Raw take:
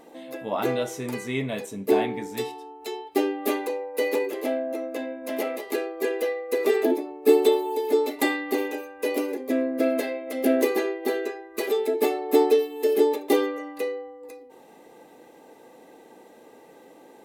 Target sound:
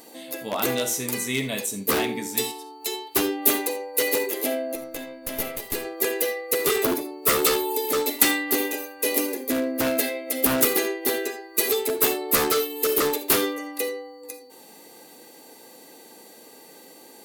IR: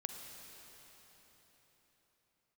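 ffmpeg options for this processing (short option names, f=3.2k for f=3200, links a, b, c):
-filter_complex "[0:a]aeval=exprs='0.133*(abs(mod(val(0)/0.133+3,4)-2)-1)':c=same,crystalizer=i=7.5:c=0,aeval=exprs='val(0)+0.00224*sin(2*PI*4500*n/s)':c=same,asettb=1/sr,asplit=3[a][b][c];[a]atrim=end=4.754[d];[b]atrim=start=4.75:end=5.85,asetpts=PTS-STARTPTS,afade=t=in:d=0.004:c=qsin,afade=t=out:st=1.096:d=0.004:c=qsin,aeval=exprs='(tanh(5.62*val(0)+0.8)-tanh(0.8))/5.62':c=same[e];[c]atrim=start=5.846[f];[d][e]acrossfade=d=0.004:c1=hsin:c2=qsin[g];[g][f]acrossfade=d=0.004:c1=qsin:c2=hsin,equalizer=f=210:t=o:w=2.1:g=4.5[h];[1:a]atrim=start_sample=2205,atrim=end_sample=3969[i];[h][i]afir=irnorm=-1:irlink=0,volume=-1.5dB"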